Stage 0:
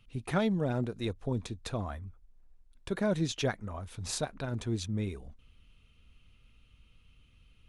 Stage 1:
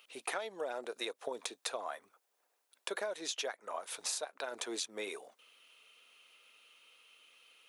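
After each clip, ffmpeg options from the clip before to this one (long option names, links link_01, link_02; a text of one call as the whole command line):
ffmpeg -i in.wav -af "highpass=frequency=480:width=0.5412,highpass=frequency=480:width=1.3066,highshelf=frequency=8900:gain=8.5,acompressor=threshold=-42dB:ratio=16,volume=7.5dB" out.wav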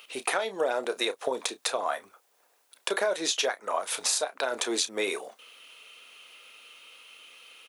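ffmpeg -i in.wav -filter_complex "[0:a]asplit=2[link_01][link_02];[link_02]alimiter=level_in=4dB:limit=-24dB:level=0:latency=1:release=249,volume=-4dB,volume=-1dB[link_03];[link_01][link_03]amix=inputs=2:normalize=0,asplit=2[link_04][link_05];[link_05]adelay=31,volume=-12dB[link_06];[link_04][link_06]amix=inputs=2:normalize=0,volume=6dB" out.wav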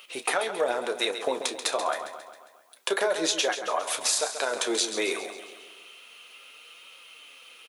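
ffmpeg -i in.wav -filter_complex "[0:a]flanger=delay=5.2:depth=7.9:regen=53:speed=0.29:shape=triangular,asplit=2[link_01][link_02];[link_02]aecho=0:1:135|270|405|540|675|810:0.316|0.174|0.0957|0.0526|0.0289|0.0159[link_03];[link_01][link_03]amix=inputs=2:normalize=0,volume=5.5dB" out.wav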